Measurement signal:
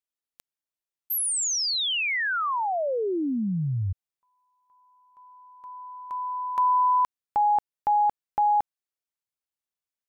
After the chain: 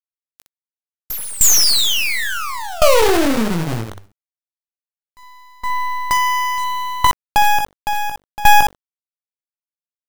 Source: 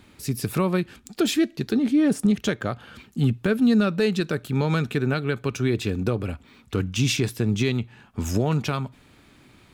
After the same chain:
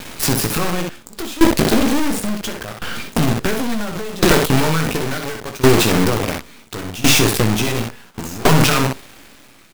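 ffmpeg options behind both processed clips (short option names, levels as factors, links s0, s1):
-filter_complex "[0:a]equalizer=f=81:w=0.87:g=-8,bandreject=f=50:t=h:w=6,bandreject=f=100:t=h:w=6,bandreject=f=150:t=h:w=6,bandreject=f=200:t=h:w=6,bandreject=f=250:t=h:w=6,bandreject=f=300:t=h:w=6,bandreject=f=350:t=h:w=6,bandreject=f=400:t=h:w=6,bandreject=f=450:t=h:w=6,bandreject=f=500:t=h:w=6,asplit=2[s0][s1];[s1]acompressor=threshold=0.0251:ratio=10:attack=20:release=93:knee=6:detection=rms,volume=1.33[s2];[s0][s2]amix=inputs=2:normalize=0,aeval=exprs='0.398*(cos(1*acos(clip(val(0)/0.398,-1,1)))-cos(1*PI/2))+0.0282*(cos(7*acos(clip(val(0)/0.398,-1,1)))-cos(7*PI/2))':c=same,acrusher=bits=6:dc=4:mix=0:aa=0.000001,aeval=exprs='(tanh(35.5*val(0)+0.8)-tanh(0.8))/35.5':c=same,asplit=2[s3][s4];[s4]aecho=0:1:18|62:0.422|0.473[s5];[s3][s5]amix=inputs=2:normalize=0,alimiter=level_in=25.1:limit=0.891:release=50:level=0:latency=1,aeval=exprs='val(0)*pow(10,-20*if(lt(mod(0.71*n/s,1),2*abs(0.71)/1000),1-mod(0.71*n/s,1)/(2*abs(0.71)/1000),(mod(0.71*n/s,1)-2*abs(0.71)/1000)/(1-2*abs(0.71)/1000))/20)':c=same"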